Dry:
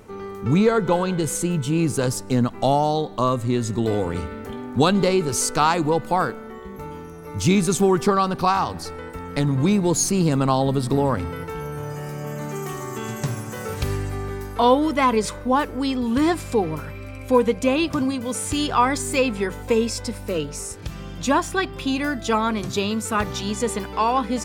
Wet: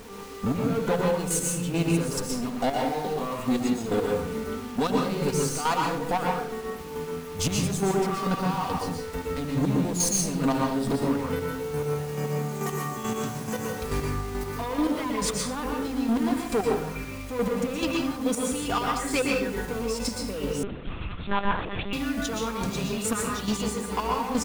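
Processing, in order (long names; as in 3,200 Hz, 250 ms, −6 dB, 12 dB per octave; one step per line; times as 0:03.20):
comb filter 4.2 ms, depth 51%
brickwall limiter −11.5 dBFS, peak gain reduction 9 dB
soft clipping −21.5 dBFS, distortion −10 dB
square-wave tremolo 2.3 Hz, depth 65%, duty 20%
bit-depth reduction 8 bits, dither none
convolution reverb RT60 0.60 s, pre-delay 112 ms, DRR −1 dB
0:20.63–0:21.93: one-pitch LPC vocoder at 8 kHz 200 Hz
level +1.5 dB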